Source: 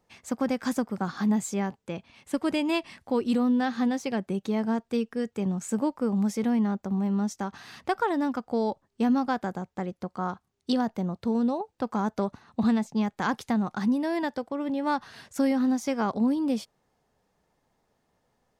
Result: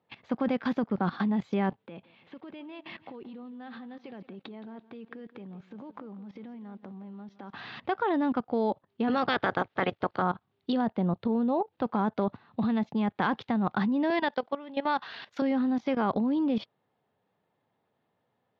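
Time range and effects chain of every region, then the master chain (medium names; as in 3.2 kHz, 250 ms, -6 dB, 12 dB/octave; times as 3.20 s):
1.76–7.57 s: compression 10:1, threshold -39 dBFS + band-pass 120–5000 Hz + bit-crushed delay 169 ms, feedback 35%, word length 10-bit, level -14 dB
9.07–10.21 s: spectral peaks clipped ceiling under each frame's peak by 21 dB + band-stop 1 kHz, Q 11 + upward compressor, threshold -43 dBFS
11.27–11.68 s: treble shelf 5.1 kHz -11.5 dB + compression, threshold -27 dBFS
14.10–15.42 s: high-pass 590 Hz 6 dB/octave + treble shelf 3.5 kHz +7 dB
whole clip: elliptic band-pass 100–3600 Hz, stop band 40 dB; level held to a coarse grid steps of 17 dB; trim +8 dB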